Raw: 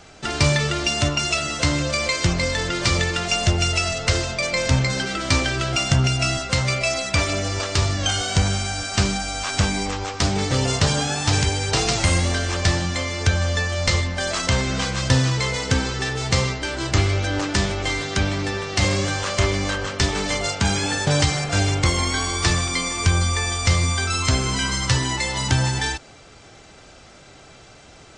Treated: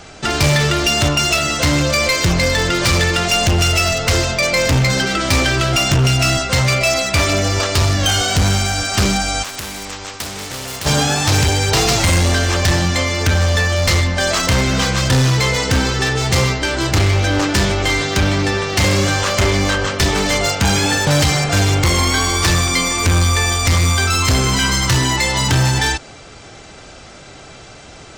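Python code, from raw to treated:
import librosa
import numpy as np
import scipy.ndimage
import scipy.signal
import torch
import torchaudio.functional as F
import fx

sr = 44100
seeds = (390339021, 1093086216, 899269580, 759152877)

y = np.clip(x, -10.0 ** (-18.5 / 20.0), 10.0 ** (-18.5 / 20.0))
y = fx.spectral_comp(y, sr, ratio=2.0, at=(9.42, 10.85), fade=0.02)
y = y * librosa.db_to_amplitude(8.0)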